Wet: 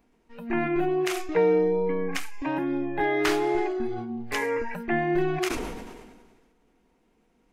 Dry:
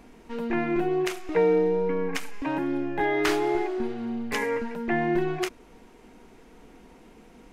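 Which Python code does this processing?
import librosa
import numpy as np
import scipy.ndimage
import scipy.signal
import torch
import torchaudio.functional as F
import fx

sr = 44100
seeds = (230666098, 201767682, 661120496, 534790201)

y = fx.noise_reduce_blind(x, sr, reduce_db=16)
y = fx.sustainer(y, sr, db_per_s=37.0)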